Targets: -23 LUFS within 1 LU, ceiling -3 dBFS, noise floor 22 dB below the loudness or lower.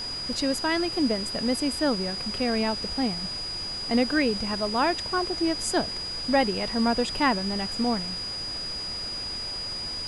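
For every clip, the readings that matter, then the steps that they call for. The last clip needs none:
steady tone 4.9 kHz; tone level -31 dBFS; noise floor -33 dBFS; noise floor target -49 dBFS; loudness -26.5 LUFS; peak level -10.0 dBFS; loudness target -23.0 LUFS
-> band-stop 4.9 kHz, Q 30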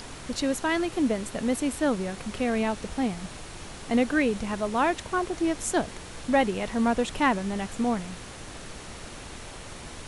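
steady tone not found; noise floor -42 dBFS; noise floor target -50 dBFS
-> noise print and reduce 8 dB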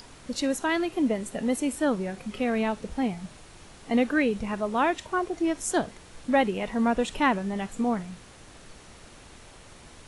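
noise floor -50 dBFS; loudness -27.5 LUFS; peak level -11.0 dBFS; loudness target -23.0 LUFS
-> trim +4.5 dB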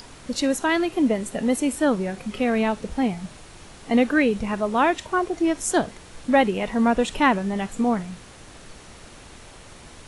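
loudness -23.0 LUFS; peak level -6.5 dBFS; noise floor -45 dBFS

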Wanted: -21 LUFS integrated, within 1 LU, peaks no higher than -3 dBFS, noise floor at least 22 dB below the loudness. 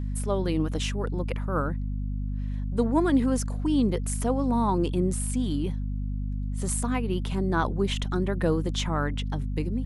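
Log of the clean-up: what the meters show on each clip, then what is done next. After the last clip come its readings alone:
hum 50 Hz; highest harmonic 250 Hz; hum level -27 dBFS; loudness -27.5 LUFS; peak level -11.0 dBFS; loudness target -21.0 LUFS
-> de-hum 50 Hz, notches 5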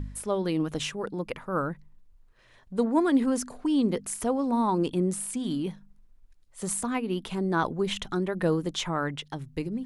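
hum not found; loudness -28.5 LUFS; peak level -12.0 dBFS; loudness target -21.0 LUFS
-> trim +7.5 dB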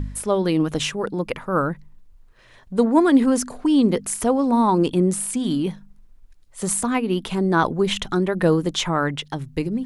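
loudness -21.0 LUFS; peak level -4.5 dBFS; noise floor -50 dBFS

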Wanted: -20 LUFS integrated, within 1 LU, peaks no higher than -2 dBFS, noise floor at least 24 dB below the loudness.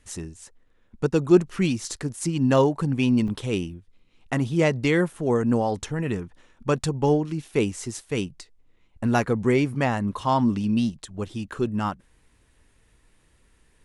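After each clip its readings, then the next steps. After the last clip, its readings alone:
dropouts 1; longest dropout 2.4 ms; loudness -24.5 LUFS; peak level -5.5 dBFS; loudness target -20.0 LUFS
-> interpolate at 3.28 s, 2.4 ms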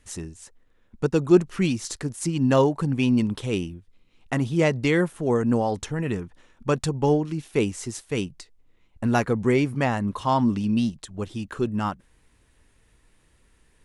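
dropouts 0; loudness -24.5 LUFS; peak level -5.5 dBFS; loudness target -20.0 LUFS
-> trim +4.5 dB; peak limiter -2 dBFS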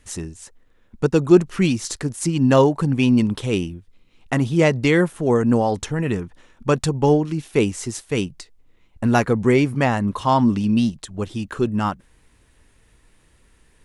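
loudness -20.0 LUFS; peak level -2.0 dBFS; noise floor -58 dBFS

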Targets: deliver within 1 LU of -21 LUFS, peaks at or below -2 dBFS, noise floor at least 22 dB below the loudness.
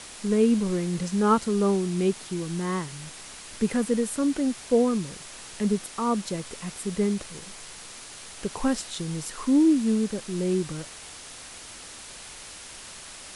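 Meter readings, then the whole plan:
noise floor -43 dBFS; noise floor target -48 dBFS; loudness -26.0 LUFS; peak level -10.0 dBFS; loudness target -21.0 LUFS
-> noise reduction 6 dB, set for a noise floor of -43 dBFS; trim +5 dB

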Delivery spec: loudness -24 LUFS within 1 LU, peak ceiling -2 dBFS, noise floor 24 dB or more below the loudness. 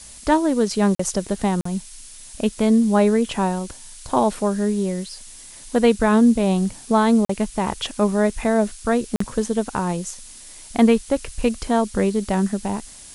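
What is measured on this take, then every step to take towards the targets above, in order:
dropouts 4; longest dropout 44 ms; noise floor -42 dBFS; noise floor target -45 dBFS; loudness -20.5 LUFS; peak level -3.5 dBFS; loudness target -24.0 LUFS
-> interpolate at 0.95/1.61/7.25/9.16 s, 44 ms; noise print and reduce 6 dB; trim -3.5 dB

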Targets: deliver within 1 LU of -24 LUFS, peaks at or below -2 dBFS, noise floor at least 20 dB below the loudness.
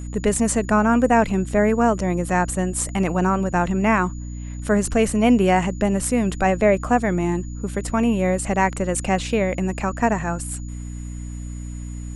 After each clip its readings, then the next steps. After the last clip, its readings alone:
hum 60 Hz; highest harmonic 300 Hz; hum level -29 dBFS; steady tone 6.9 kHz; tone level -46 dBFS; loudness -20.5 LUFS; peak level -5.0 dBFS; loudness target -24.0 LUFS
-> hum notches 60/120/180/240/300 Hz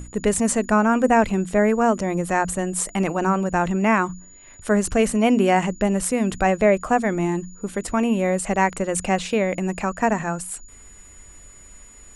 hum not found; steady tone 6.9 kHz; tone level -46 dBFS
-> band-stop 6.9 kHz, Q 30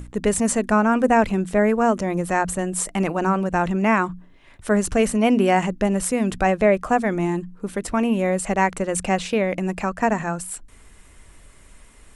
steady tone not found; loudness -21.0 LUFS; peak level -5.0 dBFS; loudness target -24.0 LUFS
-> trim -3 dB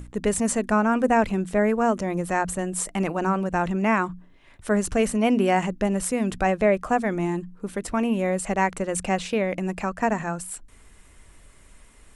loudness -24.0 LUFS; peak level -8.0 dBFS; noise floor -52 dBFS

